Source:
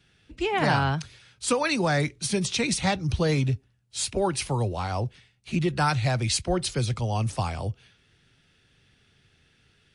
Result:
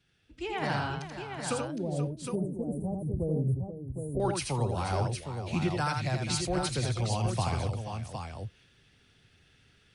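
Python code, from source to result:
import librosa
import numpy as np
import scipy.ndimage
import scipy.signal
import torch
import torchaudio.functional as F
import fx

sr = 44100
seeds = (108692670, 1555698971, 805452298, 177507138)

y = fx.rider(x, sr, range_db=10, speed_s=0.5)
y = fx.cheby2_bandstop(y, sr, low_hz=2100.0, high_hz=4700.0, order=4, stop_db=80, at=(1.59, 4.2))
y = fx.echo_multitap(y, sr, ms=(83, 483, 762), db=(-4.5, -11.5, -6.5))
y = y * 10.0 ** (-6.0 / 20.0)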